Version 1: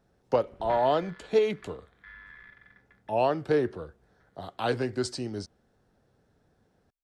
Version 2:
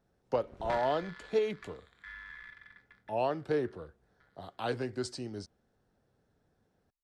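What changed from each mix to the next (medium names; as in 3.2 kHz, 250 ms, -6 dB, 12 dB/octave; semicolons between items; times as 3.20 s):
speech -6.0 dB; background: remove distance through air 200 m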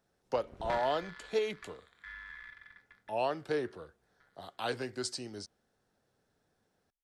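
speech: add tilt EQ +2 dB/octave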